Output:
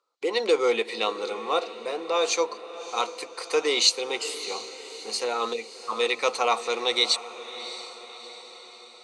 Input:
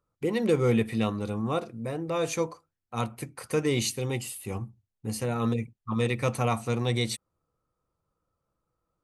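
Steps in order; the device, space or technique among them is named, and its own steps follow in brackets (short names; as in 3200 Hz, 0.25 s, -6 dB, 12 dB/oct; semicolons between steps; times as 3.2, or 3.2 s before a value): phone speaker on a table (speaker cabinet 450–7600 Hz, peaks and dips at 600 Hz -6 dB, 1700 Hz -7 dB, 4200 Hz +9 dB); diffused feedback echo 0.654 s, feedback 54%, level -13.5 dB; gain +7.5 dB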